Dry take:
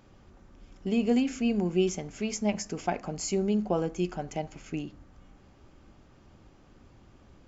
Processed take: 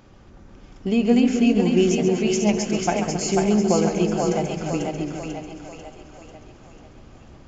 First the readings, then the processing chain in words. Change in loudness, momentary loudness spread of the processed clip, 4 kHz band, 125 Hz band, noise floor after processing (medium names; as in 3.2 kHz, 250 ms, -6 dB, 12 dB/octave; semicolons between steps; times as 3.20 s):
+9.0 dB, 15 LU, +9.5 dB, +9.5 dB, -48 dBFS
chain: two-band feedback delay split 430 Hz, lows 264 ms, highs 493 ms, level -3 dB; resampled via 16 kHz; modulated delay 136 ms, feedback 58%, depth 58 cents, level -10 dB; trim +6.5 dB